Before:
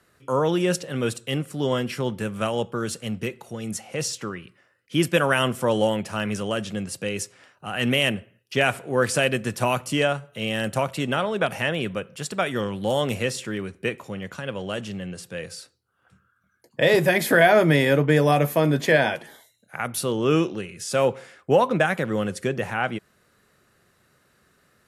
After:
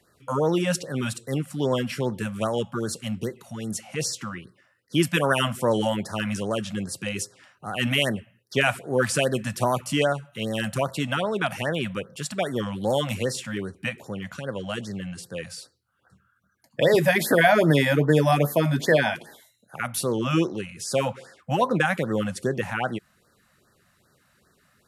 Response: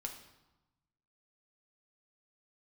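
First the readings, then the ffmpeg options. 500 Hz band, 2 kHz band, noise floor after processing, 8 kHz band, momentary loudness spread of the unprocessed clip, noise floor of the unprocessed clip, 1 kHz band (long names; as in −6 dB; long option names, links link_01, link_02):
−2.0 dB, −2.0 dB, −66 dBFS, 0.0 dB, 14 LU, −65 dBFS, −1.0 dB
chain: -af "afftfilt=real='re*(1-between(b*sr/1024,340*pow(2900/340,0.5+0.5*sin(2*PI*2.5*pts/sr))/1.41,340*pow(2900/340,0.5+0.5*sin(2*PI*2.5*pts/sr))*1.41))':imag='im*(1-between(b*sr/1024,340*pow(2900/340,0.5+0.5*sin(2*PI*2.5*pts/sr))/1.41,340*pow(2900/340,0.5+0.5*sin(2*PI*2.5*pts/sr))*1.41))':win_size=1024:overlap=0.75"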